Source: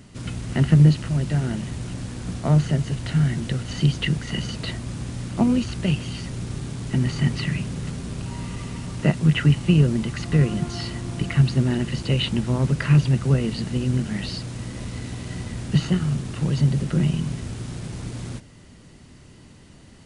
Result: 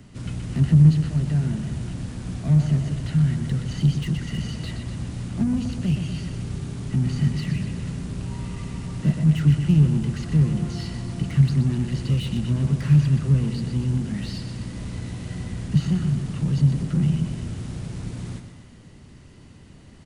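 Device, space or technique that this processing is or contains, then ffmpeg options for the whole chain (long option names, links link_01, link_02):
one-band saturation: -filter_complex "[0:a]bass=frequency=250:gain=3,treble=frequency=4000:gain=-3,aecho=1:1:123|246|369|492|615|738|861:0.335|0.188|0.105|0.0588|0.0329|0.0184|0.0103,acrossover=split=260|4900[link_01][link_02][link_03];[link_02]asoftclip=type=tanh:threshold=-35dB[link_04];[link_01][link_04][link_03]amix=inputs=3:normalize=0,volume=-2dB"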